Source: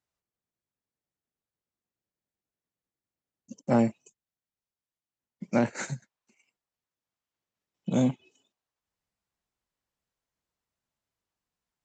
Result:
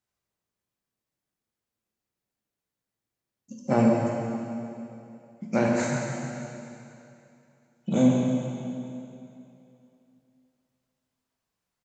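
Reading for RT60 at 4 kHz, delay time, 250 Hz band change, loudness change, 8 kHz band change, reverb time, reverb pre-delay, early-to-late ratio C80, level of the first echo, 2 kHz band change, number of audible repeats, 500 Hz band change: 2.6 s, 143 ms, +5.0 dB, +1.5 dB, can't be measured, 2.8 s, 5 ms, 0.5 dB, −9.0 dB, +4.5 dB, 1, +5.0 dB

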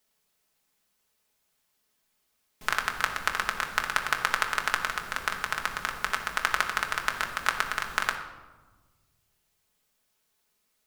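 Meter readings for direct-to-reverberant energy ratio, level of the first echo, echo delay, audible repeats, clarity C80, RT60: 1.5 dB, no echo audible, no echo audible, no echo audible, 10.0 dB, 1.3 s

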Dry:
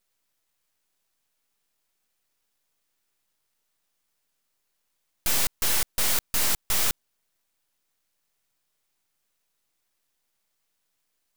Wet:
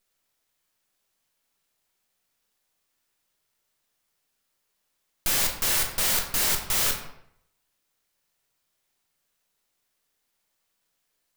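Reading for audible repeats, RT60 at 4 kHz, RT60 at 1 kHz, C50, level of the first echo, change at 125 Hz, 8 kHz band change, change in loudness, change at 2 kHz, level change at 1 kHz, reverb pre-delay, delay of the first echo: no echo audible, 0.50 s, 0.70 s, 6.5 dB, no echo audible, +1.5 dB, +1.0 dB, +1.0 dB, +2.0 dB, +1.5 dB, 17 ms, no echo audible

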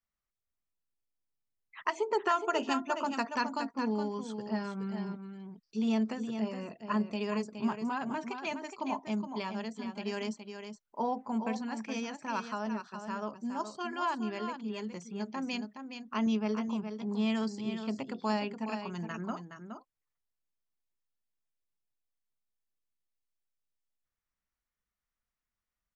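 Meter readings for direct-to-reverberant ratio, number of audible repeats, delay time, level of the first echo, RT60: no reverb audible, 1, 418 ms, −8.0 dB, no reverb audible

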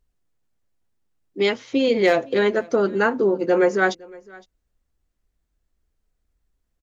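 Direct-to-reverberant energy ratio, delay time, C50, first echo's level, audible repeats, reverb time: no reverb audible, 512 ms, no reverb audible, −24.0 dB, 1, no reverb audible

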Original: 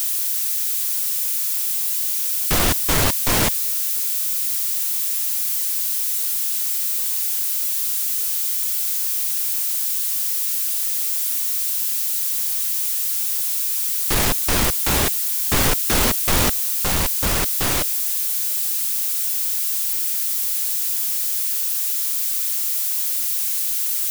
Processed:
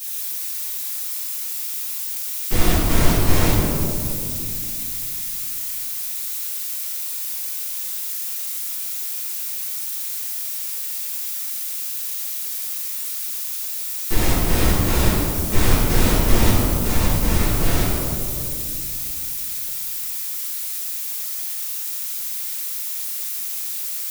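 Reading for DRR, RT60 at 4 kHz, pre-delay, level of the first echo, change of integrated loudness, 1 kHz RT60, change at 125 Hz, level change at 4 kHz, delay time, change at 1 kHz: −12.5 dB, 1.3 s, 4 ms, no echo audible, −4.0 dB, 2.1 s, +7.0 dB, −4.0 dB, no echo audible, −1.0 dB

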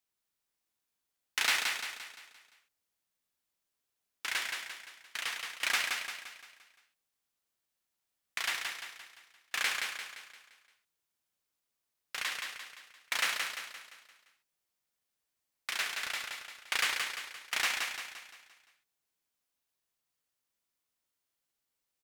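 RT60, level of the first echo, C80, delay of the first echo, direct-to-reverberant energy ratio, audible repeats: no reverb audible, −4.5 dB, no reverb audible, 173 ms, no reverb audible, 5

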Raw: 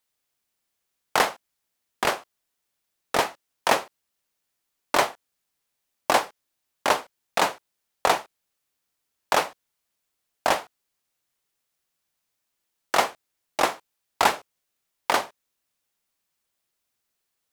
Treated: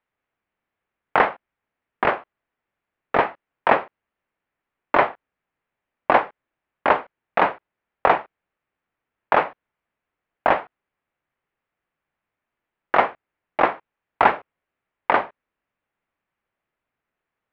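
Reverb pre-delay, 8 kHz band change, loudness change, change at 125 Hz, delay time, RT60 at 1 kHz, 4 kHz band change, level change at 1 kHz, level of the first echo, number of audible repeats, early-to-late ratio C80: no reverb audible, below −30 dB, +3.5 dB, +4.5 dB, no echo audible, no reverb audible, −8.5 dB, +4.5 dB, no echo audible, no echo audible, no reverb audible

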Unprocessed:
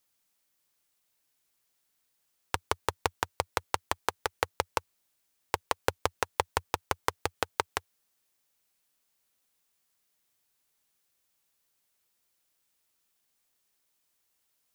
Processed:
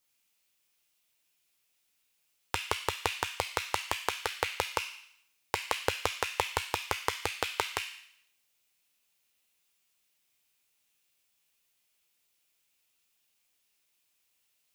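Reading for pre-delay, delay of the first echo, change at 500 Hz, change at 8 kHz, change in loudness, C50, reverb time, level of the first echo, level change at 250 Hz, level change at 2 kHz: 9 ms, no echo audible, −2.0 dB, +1.0 dB, 0.0 dB, 4.0 dB, 0.75 s, no echo audible, −2.0 dB, +2.0 dB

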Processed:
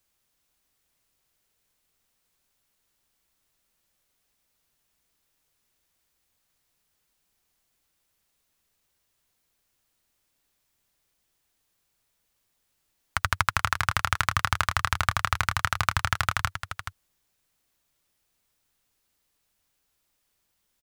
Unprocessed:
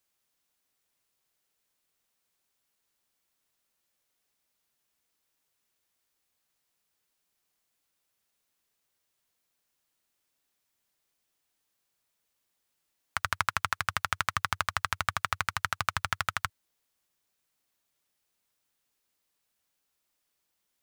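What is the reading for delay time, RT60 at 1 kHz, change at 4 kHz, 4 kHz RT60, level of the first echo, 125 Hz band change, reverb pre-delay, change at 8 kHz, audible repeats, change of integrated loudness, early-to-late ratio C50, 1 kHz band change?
427 ms, no reverb audible, +4.5 dB, no reverb audible, −9.5 dB, +10.5 dB, no reverb audible, +4.5 dB, 1, +4.5 dB, no reverb audible, +4.5 dB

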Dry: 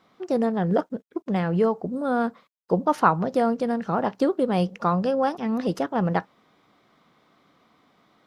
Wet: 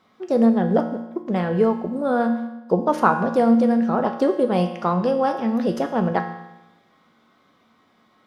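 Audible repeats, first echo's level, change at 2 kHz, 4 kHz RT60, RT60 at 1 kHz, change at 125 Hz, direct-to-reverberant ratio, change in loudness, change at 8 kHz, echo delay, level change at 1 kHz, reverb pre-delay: no echo audible, no echo audible, +3.0 dB, 0.95 s, 1.0 s, +1.0 dB, 4.0 dB, +3.5 dB, can't be measured, no echo audible, +2.0 dB, 4 ms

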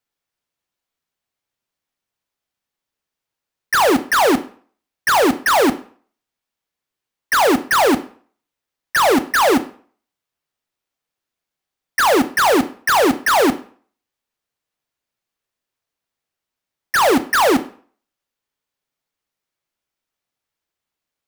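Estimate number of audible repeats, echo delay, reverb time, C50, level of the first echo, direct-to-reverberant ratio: no echo audible, no echo audible, 0.45 s, 16.0 dB, no echo audible, 10.0 dB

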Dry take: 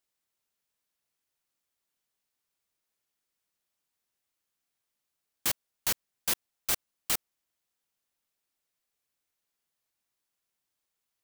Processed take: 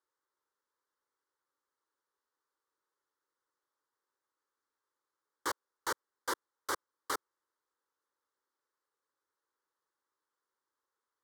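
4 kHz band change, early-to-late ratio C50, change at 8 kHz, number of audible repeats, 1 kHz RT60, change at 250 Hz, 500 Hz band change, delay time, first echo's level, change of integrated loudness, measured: −9.5 dB, no reverb audible, −11.0 dB, no echo audible, no reverb audible, −1.5 dB, +2.5 dB, no echo audible, no echo audible, −8.5 dB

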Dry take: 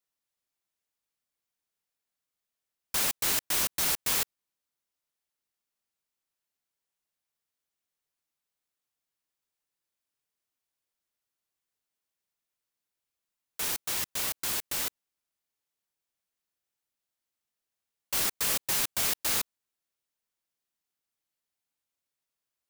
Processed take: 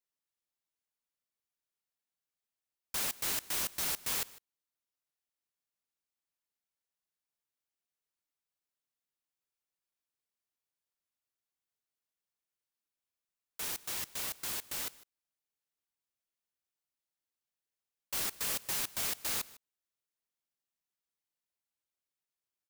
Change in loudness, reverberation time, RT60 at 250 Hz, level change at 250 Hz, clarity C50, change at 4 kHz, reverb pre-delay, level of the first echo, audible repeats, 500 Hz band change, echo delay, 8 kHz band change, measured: −6.5 dB, no reverb audible, no reverb audible, −6.5 dB, no reverb audible, −6.5 dB, no reverb audible, −21.0 dB, 1, −6.5 dB, 153 ms, −6.5 dB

